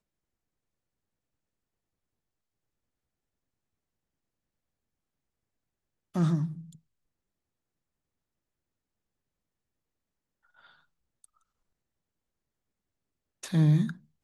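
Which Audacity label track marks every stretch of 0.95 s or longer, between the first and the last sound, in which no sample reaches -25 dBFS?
6.440000	13.540000	silence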